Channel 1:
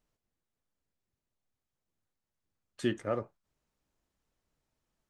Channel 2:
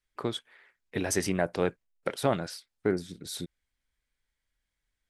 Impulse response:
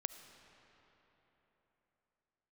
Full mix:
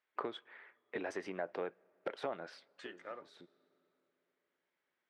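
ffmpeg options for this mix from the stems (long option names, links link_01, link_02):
-filter_complex "[0:a]acompressor=threshold=-33dB:ratio=6,tiltshelf=frequency=1200:gain=-8.5,volume=-4.5dB,asplit=3[link_01][link_02][link_03];[link_02]volume=-14.5dB[link_04];[1:a]acompressor=threshold=-35dB:ratio=10,aeval=exprs='0.133*sin(PI/2*1.78*val(0)/0.133)':channel_layout=same,volume=-6dB,asplit=2[link_05][link_06];[link_06]volume=-18dB[link_07];[link_03]apad=whole_len=224686[link_08];[link_05][link_08]sidechaincompress=threshold=-59dB:ratio=6:attack=8.2:release=1210[link_09];[2:a]atrim=start_sample=2205[link_10];[link_04][link_07]amix=inputs=2:normalize=0[link_11];[link_11][link_10]afir=irnorm=-1:irlink=0[link_12];[link_01][link_09][link_12]amix=inputs=3:normalize=0,highpass=390,lowpass=2100"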